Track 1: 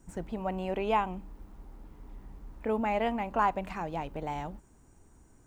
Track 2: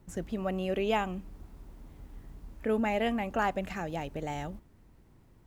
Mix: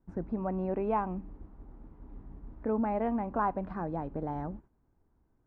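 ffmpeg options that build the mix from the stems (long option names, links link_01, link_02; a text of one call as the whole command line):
ffmpeg -i stem1.wav -i stem2.wav -filter_complex "[0:a]agate=range=-9dB:threshold=-53dB:ratio=16:detection=peak,volume=-3dB,asplit=2[link_01][link_02];[1:a]equalizer=frequency=280:width=1.5:gain=6.5,alimiter=level_in=0.5dB:limit=-24dB:level=0:latency=1:release=285,volume=-0.5dB,volume=-5dB[link_03];[link_02]apad=whole_len=240802[link_04];[link_03][link_04]sidechaingate=range=-33dB:threshold=-49dB:ratio=16:detection=peak[link_05];[link_01][link_05]amix=inputs=2:normalize=0,lowpass=1500" out.wav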